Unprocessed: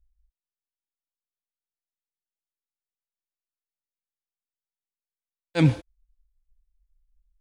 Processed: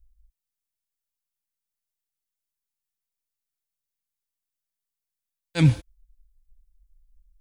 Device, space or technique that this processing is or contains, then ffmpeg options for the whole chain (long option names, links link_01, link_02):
smiley-face EQ: -af "lowshelf=frequency=140:gain=9,equalizer=frequency=470:width_type=o:width=2.3:gain=-6,highshelf=frequency=6000:gain=8.5"